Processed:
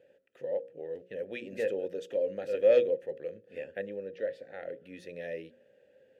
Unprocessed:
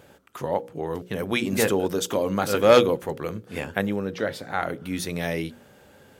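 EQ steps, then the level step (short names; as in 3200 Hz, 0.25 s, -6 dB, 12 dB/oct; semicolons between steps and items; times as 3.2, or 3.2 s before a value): vowel filter e; low shelf 340 Hz +12 dB; high shelf 4400 Hz +6.5 dB; -5.5 dB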